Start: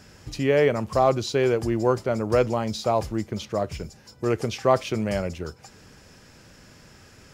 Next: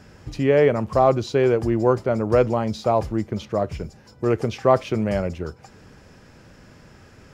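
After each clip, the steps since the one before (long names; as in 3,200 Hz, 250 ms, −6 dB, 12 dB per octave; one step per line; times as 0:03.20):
high-shelf EQ 2,900 Hz −10.5 dB
level +3.5 dB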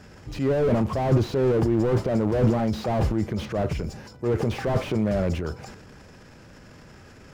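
transient designer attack −5 dB, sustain +9 dB
slew-rate limiting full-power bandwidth 45 Hz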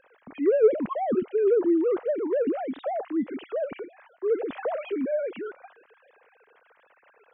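three sine waves on the formant tracks
level −2.5 dB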